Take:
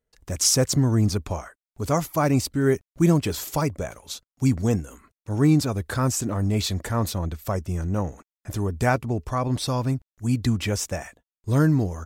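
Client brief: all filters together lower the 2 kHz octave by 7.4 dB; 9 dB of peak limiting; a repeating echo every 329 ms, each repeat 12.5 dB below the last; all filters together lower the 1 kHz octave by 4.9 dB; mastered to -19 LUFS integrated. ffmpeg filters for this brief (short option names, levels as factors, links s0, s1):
-af "equalizer=f=1000:t=o:g=-4.5,equalizer=f=2000:t=o:g=-8.5,alimiter=limit=0.141:level=0:latency=1,aecho=1:1:329|658|987:0.237|0.0569|0.0137,volume=2.66"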